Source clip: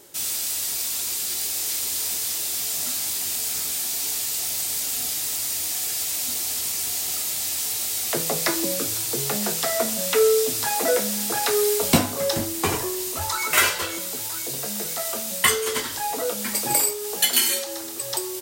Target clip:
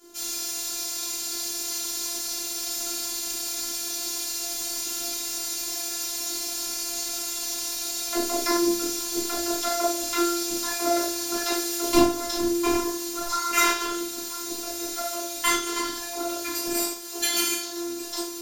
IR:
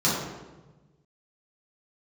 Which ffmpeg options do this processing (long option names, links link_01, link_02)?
-filter_complex "[1:a]atrim=start_sample=2205,atrim=end_sample=4410[link_01];[0:a][link_01]afir=irnorm=-1:irlink=0,afftfilt=real='hypot(re,im)*cos(PI*b)':imag='0':win_size=512:overlap=0.75,volume=-11dB"